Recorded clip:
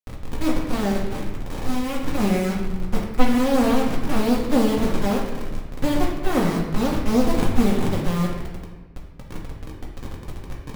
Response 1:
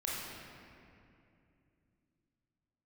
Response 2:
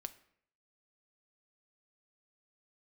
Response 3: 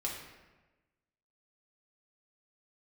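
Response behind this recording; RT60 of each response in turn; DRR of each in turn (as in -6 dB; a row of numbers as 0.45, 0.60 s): 3; 2.6, 0.65, 1.2 s; -6.5, 10.5, -3.0 dB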